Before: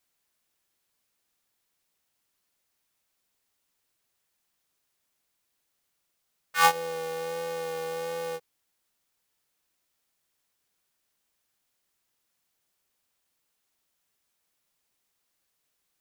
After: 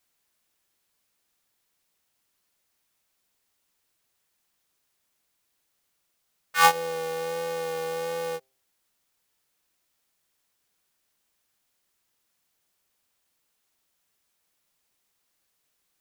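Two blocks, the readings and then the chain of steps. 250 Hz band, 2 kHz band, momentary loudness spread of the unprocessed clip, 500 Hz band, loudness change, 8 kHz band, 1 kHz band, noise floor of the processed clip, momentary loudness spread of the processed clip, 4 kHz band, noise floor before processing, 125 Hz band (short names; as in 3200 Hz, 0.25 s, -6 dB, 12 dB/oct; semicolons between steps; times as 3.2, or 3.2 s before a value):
+2.5 dB, +2.5 dB, 12 LU, +2.5 dB, +2.5 dB, +2.5 dB, +2.5 dB, -75 dBFS, 12 LU, +2.5 dB, -78 dBFS, +2.5 dB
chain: de-hum 131.8 Hz, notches 6; gain +2.5 dB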